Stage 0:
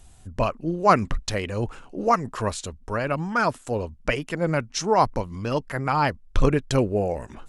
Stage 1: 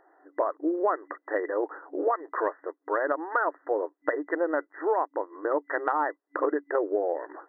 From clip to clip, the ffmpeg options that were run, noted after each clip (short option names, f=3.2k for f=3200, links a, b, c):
-af "afftfilt=real='re*between(b*sr/4096,290,2000)':imag='im*between(b*sr/4096,290,2000)':win_size=4096:overlap=0.75,acompressor=threshold=-26dB:ratio=12,volume=4dB"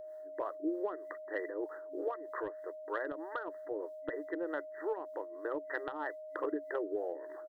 -filter_complex "[0:a]acrossover=split=400[a][b];[a]aeval=exprs='val(0)*(1-0.7/2+0.7/2*cos(2*PI*3.2*n/s))':c=same[c];[b]aeval=exprs='val(0)*(1-0.7/2-0.7/2*cos(2*PI*3.2*n/s))':c=same[d];[c][d]amix=inputs=2:normalize=0,firequalizer=gain_entry='entry(130,0);entry(230,-10);entry(350,-8);entry(630,-15);entry(1400,-13);entry(2200,-6);entry(3200,11)':delay=0.05:min_phase=1,aeval=exprs='val(0)+0.00398*sin(2*PI*620*n/s)':c=same,volume=4dB"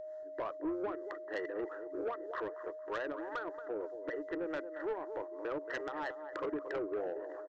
-filter_complex "[0:a]asplit=2[a][b];[b]adelay=228,lowpass=f=2.1k:p=1,volume=-12dB,asplit=2[c][d];[d]adelay=228,lowpass=f=2.1k:p=1,volume=0.27,asplit=2[e][f];[f]adelay=228,lowpass=f=2.1k:p=1,volume=0.27[g];[a][c][e][g]amix=inputs=4:normalize=0,aresample=16000,asoftclip=type=tanh:threshold=-33dB,aresample=44100,volume=2dB"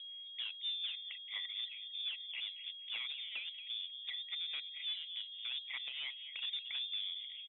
-af "lowpass=f=3.3k:t=q:w=0.5098,lowpass=f=3.3k:t=q:w=0.6013,lowpass=f=3.3k:t=q:w=0.9,lowpass=f=3.3k:t=q:w=2.563,afreqshift=-3900,volume=-3.5dB"